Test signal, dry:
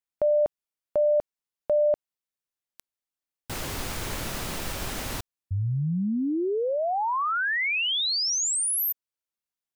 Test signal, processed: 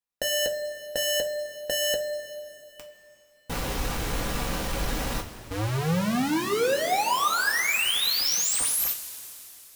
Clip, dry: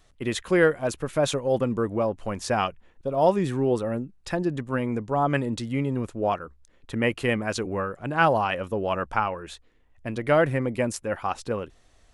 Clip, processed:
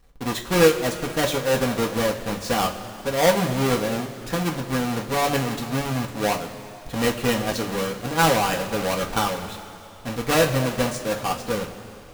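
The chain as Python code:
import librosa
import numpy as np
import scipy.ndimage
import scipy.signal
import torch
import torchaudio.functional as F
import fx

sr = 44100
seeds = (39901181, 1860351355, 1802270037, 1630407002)

y = fx.halfwave_hold(x, sr)
y = fx.rev_double_slope(y, sr, seeds[0], early_s=0.21, late_s=3.2, knee_db=-18, drr_db=0.0)
y = y * librosa.db_to_amplitude(-4.5)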